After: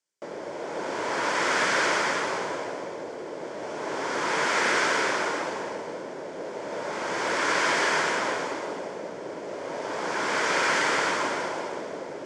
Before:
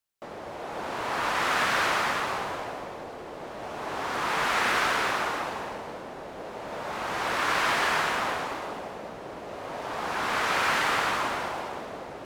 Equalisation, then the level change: cabinet simulation 220–7900 Hz, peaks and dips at 230 Hz -5 dB, 760 Hz -10 dB, 1.2 kHz -10 dB, 1.8 kHz -4 dB, 2.7 kHz -9 dB, 3.9 kHz -9 dB; +7.0 dB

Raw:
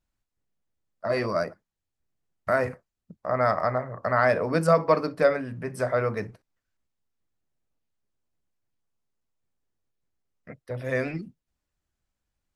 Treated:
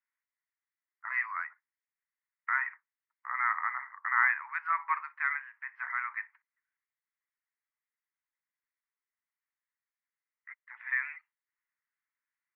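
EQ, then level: steep high-pass 910 Hz 72 dB/octave; resonant low-pass 2 kHz, resonance Q 6; distance through air 450 m; -5.0 dB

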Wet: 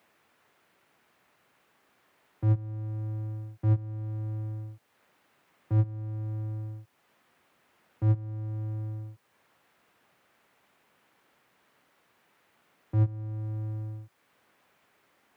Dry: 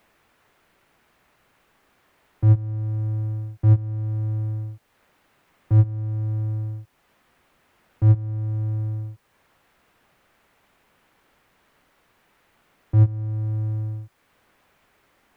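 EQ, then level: high-pass 93 Hz; bass shelf 120 Hz -5 dB; -4.0 dB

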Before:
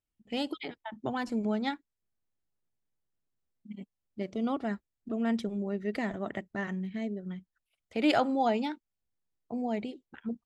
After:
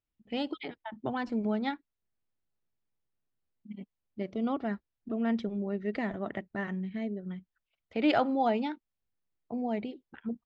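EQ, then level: Bessel low-pass 3.6 kHz, order 4; 0.0 dB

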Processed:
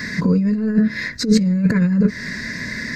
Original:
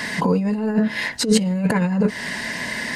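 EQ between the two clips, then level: bass shelf 190 Hz +9.5 dB; static phaser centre 3 kHz, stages 6; 0.0 dB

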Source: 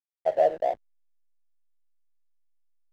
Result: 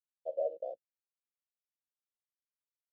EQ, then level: vowel filter e; Butterworth band-stop 1.9 kHz, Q 0.58; -4.0 dB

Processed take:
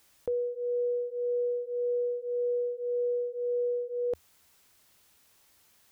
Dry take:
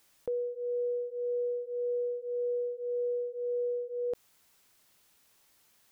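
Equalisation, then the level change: peaking EQ 78 Hz +9.5 dB 0.34 oct; +2.5 dB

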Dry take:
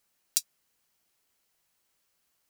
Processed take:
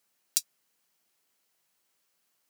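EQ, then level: high-pass 140 Hz 12 dB/octave; 0.0 dB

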